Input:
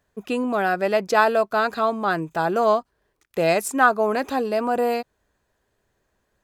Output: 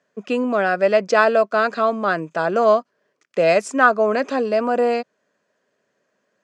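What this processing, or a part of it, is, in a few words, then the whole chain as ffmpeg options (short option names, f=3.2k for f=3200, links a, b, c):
television speaker: -af "highpass=f=180:w=0.5412,highpass=f=180:w=1.3066,equalizer=f=340:t=q:w=4:g=-5,equalizer=f=580:t=q:w=4:g=5,equalizer=f=840:t=q:w=4:g=-8,equalizer=f=3.8k:t=q:w=4:g=-6,lowpass=f=6.8k:w=0.5412,lowpass=f=6.8k:w=1.3066,volume=3.5dB"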